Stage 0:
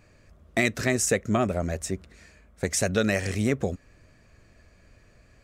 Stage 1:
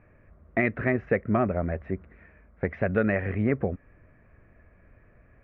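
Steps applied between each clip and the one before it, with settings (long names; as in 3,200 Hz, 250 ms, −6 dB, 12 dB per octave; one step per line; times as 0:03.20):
Butterworth low-pass 2,200 Hz 36 dB per octave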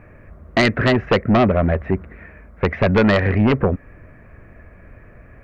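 sine wavefolder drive 9 dB, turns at −9.5 dBFS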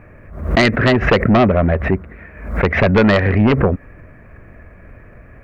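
background raised ahead of every attack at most 89 dB per second
level +2.5 dB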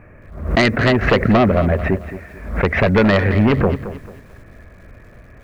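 feedback echo at a low word length 221 ms, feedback 35%, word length 7 bits, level −12.5 dB
level −1.5 dB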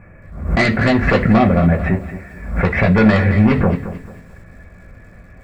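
convolution reverb RT60 0.30 s, pre-delay 3 ms, DRR −0.5 dB
level −3.5 dB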